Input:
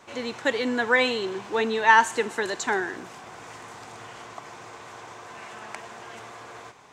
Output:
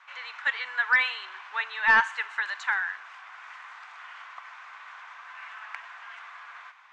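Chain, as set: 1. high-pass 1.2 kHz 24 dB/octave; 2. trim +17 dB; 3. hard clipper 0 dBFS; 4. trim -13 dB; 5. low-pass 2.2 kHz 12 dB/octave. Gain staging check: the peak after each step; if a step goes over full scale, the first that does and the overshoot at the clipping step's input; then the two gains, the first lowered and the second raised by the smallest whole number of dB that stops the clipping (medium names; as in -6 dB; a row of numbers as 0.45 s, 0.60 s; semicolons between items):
-8.5 dBFS, +8.5 dBFS, 0.0 dBFS, -13.0 dBFS, -12.5 dBFS; step 2, 8.5 dB; step 2 +8 dB, step 4 -4 dB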